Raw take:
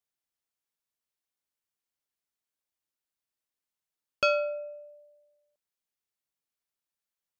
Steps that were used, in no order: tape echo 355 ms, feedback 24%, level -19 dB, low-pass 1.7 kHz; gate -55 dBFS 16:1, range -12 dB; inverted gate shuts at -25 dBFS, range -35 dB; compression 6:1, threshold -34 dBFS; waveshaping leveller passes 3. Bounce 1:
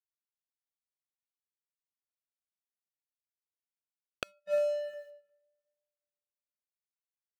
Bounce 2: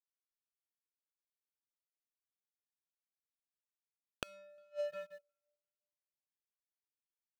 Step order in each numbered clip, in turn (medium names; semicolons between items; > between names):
inverted gate > compression > waveshaping leveller > tape echo > gate; tape echo > waveshaping leveller > gate > inverted gate > compression